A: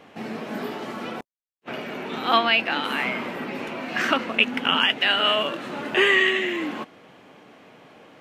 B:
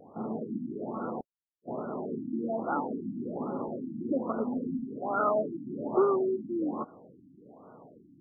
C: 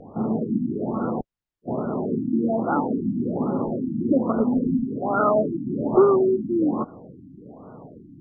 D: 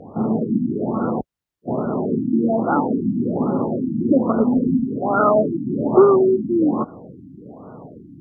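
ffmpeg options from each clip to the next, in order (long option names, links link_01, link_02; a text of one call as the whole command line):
ffmpeg -i in.wav -af "afftfilt=real='re*lt(b*sr/1024,330*pow(1500/330,0.5+0.5*sin(2*PI*1.2*pts/sr)))':imag='im*lt(b*sr/1024,330*pow(1500/330,0.5+0.5*sin(2*PI*1.2*pts/sr)))':win_size=1024:overlap=0.75,volume=-1.5dB" out.wav
ffmpeg -i in.wav -af "aemphasis=mode=reproduction:type=bsi,volume=6.5dB" out.wav
ffmpeg -i in.wav -af "highpass=47,volume=4dB" out.wav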